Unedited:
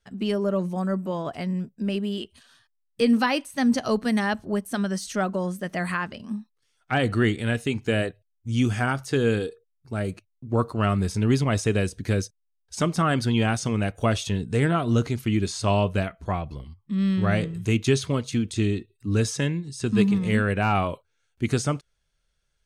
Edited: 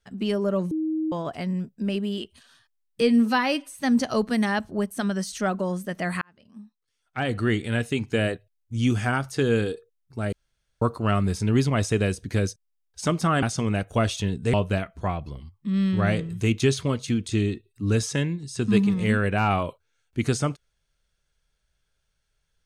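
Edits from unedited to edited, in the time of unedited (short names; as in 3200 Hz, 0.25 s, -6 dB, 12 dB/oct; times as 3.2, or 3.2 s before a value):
0.71–1.12 bleep 315 Hz -23 dBFS
3.01–3.52 stretch 1.5×
5.96–7.55 fade in
10.07–10.56 room tone
13.17–13.5 cut
14.61–15.78 cut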